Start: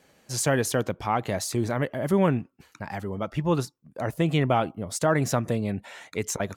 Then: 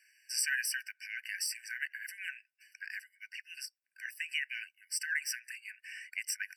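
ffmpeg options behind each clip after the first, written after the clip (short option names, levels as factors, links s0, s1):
-af "afftfilt=real='re*eq(mod(floor(b*sr/1024/1500),2),1)':imag='im*eq(mod(floor(b*sr/1024/1500),2),1)':win_size=1024:overlap=0.75"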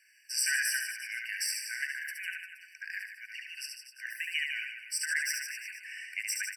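-af "aecho=1:1:70|150.5|243.1|349.5|472:0.631|0.398|0.251|0.158|0.1,volume=1.19"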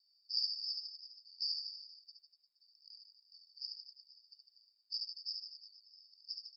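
-af "asuperpass=centerf=4400:order=20:qfactor=2.8,volume=1.33"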